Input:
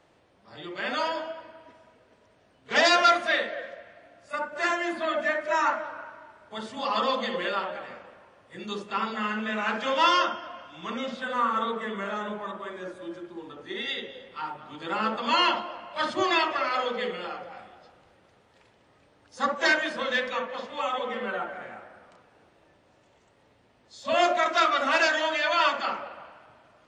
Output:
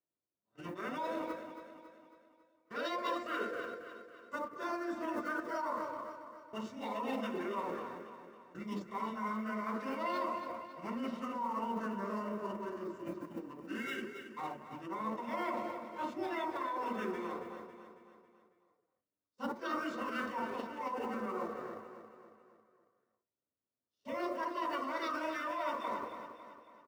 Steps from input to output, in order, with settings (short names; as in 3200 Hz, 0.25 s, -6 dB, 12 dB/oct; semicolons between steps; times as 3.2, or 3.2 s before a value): G.711 law mismatch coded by A; notches 60/120/180 Hz; gate -49 dBFS, range -26 dB; bell 3700 Hz -9 dB 1.1 oct; reverse; compressor 6:1, threshold -34 dBFS, peak gain reduction 16 dB; reverse; notch comb 830 Hz; formant shift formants -4 st; on a send: feedback echo 0.275 s, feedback 50%, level -10 dB